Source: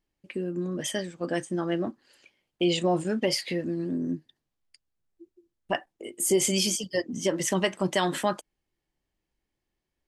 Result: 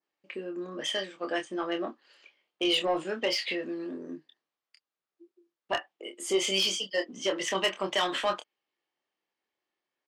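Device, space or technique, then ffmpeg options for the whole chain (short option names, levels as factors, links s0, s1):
intercom: -filter_complex "[0:a]adynamicequalizer=threshold=0.00501:dfrequency=3000:dqfactor=1.9:tfrequency=3000:tqfactor=1.9:attack=5:release=100:ratio=0.375:range=3.5:mode=boostabove:tftype=bell,highpass=440,lowpass=4700,equalizer=f=1200:t=o:w=0.26:g=5,asoftclip=type=tanh:threshold=0.106,asplit=2[s0][s1];[s1]adelay=26,volume=0.473[s2];[s0][s2]amix=inputs=2:normalize=0"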